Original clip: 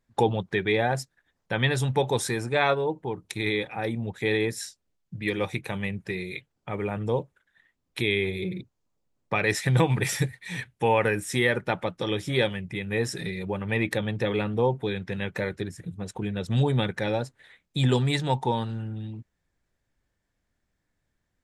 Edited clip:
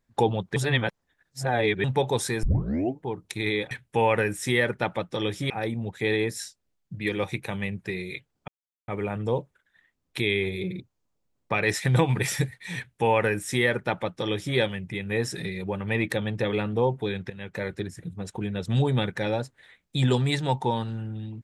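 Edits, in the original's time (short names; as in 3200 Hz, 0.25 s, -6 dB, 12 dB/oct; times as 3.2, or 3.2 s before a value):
0.56–1.84 reverse
2.43 tape start 0.57 s
6.69 insert silence 0.40 s
10.58–12.37 copy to 3.71
15.11–15.55 fade in, from -13.5 dB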